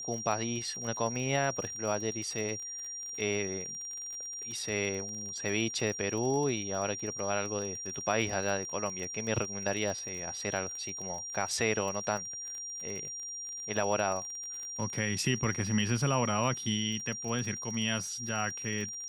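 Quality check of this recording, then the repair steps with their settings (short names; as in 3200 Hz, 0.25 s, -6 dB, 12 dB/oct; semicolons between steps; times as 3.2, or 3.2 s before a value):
crackle 33/s -37 dBFS
tone 5700 Hz -38 dBFS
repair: de-click; notch 5700 Hz, Q 30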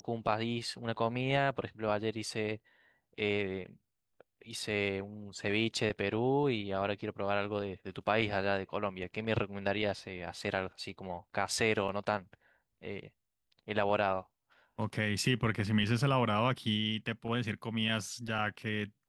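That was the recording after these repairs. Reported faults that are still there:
none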